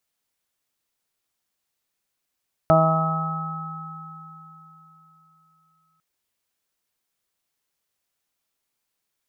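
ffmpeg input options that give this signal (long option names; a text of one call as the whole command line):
ffmpeg -f lavfi -i "aevalsrc='0.126*pow(10,-3*t/3.57)*sin(2*PI*161*t)+0.0531*pow(10,-3*t/0.93)*sin(2*PI*322*t)+0.0224*pow(10,-3*t/1.72)*sin(2*PI*483*t)+0.224*pow(10,-3*t/1.15)*sin(2*PI*644*t)+0.0794*pow(10,-3*t/2.86)*sin(2*PI*805*t)+0.0224*pow(10,-3*t/1.7)*sin(2*PI*966*t)+0.0251*pow(10,-3*t/2.51)*sin(2*PI*1127*t)+0.112*pow(10,-3*t/4.18)*sin(2*PI*1288*t)':duration=3.3:sample_rate=44100" out.wav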